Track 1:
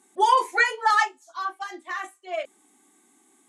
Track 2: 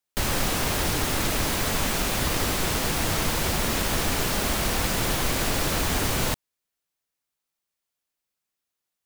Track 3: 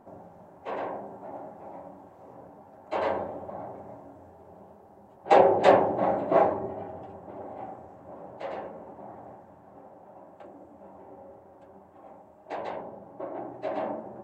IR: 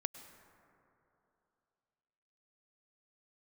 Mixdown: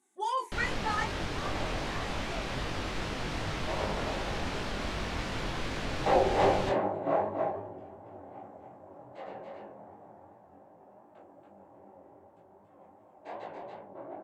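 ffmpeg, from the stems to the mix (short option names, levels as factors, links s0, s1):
-filter_complex "[0:a]volume=0.335[s0];[1:a]lowpass=4000,adelay=350,volume=0.531[s1];[2:a]flanger=delay=17:depth=3.7:speed=3,adelay=750,volume=0.841,asplit=2[s2][s3];[s3]volume=0.631,aecho=0:1:281:1[s4];[s0][s1][s2][s4]amix=inputs=4:normalize=0,flanger=delay=19:depth=5.7:speed=2.6"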